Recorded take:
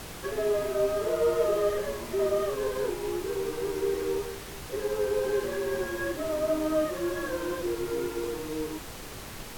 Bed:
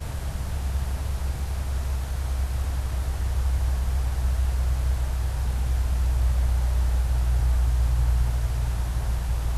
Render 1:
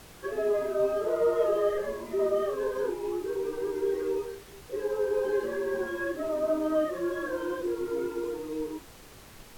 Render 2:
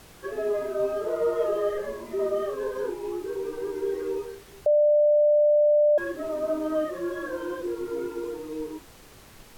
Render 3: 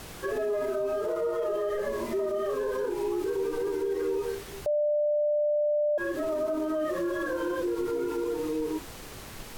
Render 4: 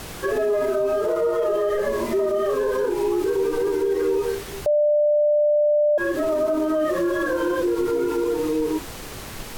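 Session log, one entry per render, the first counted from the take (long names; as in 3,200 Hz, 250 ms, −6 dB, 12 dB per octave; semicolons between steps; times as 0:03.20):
noise reduction from a noise print 9 dB
0:04.66–0:05.98: beep over 594 Hz −16 dBFS
in parallel at +2 dB: downward compressor, threshold −32 dBFS, peak gain reduction 12.5 dB; on the sum: brickwall limiter −22.5 dBFS, peak gain reduction 10 dB
level +7.5 dB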